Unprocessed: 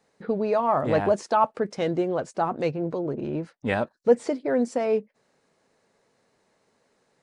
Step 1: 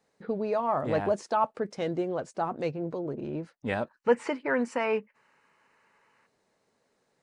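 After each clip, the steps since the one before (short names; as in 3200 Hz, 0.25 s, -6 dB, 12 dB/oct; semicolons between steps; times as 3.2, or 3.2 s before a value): spectral gain 3.89–6.26, 820–3100 Hz +12 dB; gain -5 dB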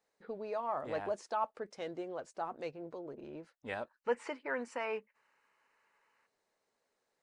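bell 150 Hz -11 dB 2 oct; gain -7.5 dB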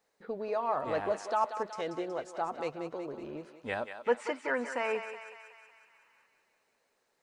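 thinning echo 0.185 s, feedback 64%, high-pass 610 Hz, level -8 dB; gain +5 dB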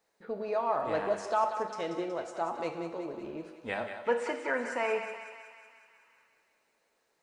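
two-slope reverb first 0.87 s, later 2.7 s, from -23 dB, DRR 5.5 dB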